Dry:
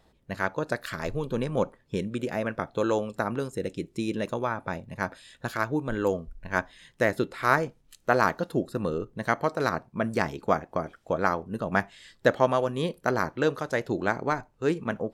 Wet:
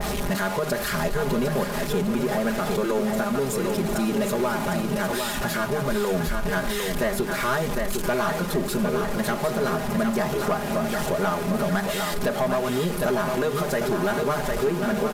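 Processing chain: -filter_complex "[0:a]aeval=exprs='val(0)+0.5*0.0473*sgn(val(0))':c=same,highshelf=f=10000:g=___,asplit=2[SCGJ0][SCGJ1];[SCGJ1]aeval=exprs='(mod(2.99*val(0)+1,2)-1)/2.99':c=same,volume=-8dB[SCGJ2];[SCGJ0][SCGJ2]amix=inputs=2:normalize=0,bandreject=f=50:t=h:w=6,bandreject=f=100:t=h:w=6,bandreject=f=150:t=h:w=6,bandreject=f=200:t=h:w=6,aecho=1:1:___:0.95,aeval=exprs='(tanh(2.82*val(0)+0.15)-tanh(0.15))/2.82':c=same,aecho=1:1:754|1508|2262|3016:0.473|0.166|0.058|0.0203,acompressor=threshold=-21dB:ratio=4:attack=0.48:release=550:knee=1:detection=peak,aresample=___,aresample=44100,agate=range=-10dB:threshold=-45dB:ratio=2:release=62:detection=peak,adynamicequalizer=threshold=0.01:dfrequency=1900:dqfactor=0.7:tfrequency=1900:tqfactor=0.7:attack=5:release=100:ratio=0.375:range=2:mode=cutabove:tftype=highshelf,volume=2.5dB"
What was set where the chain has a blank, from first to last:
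8, 4.9, 32000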